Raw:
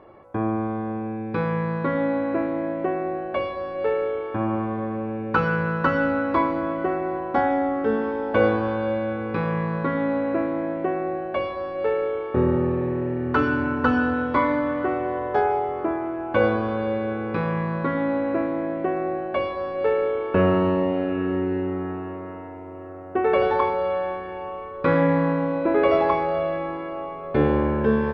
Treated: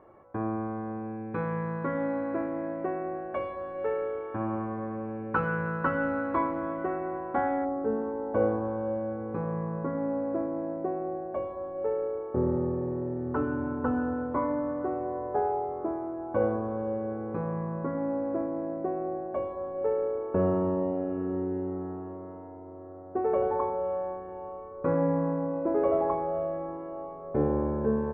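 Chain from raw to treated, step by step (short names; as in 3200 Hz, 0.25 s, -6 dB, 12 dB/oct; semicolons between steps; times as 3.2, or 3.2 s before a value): Chebyshev low-pass 1600 Hz, order 2, from 7.64 s 810 Hz; gain -6 dB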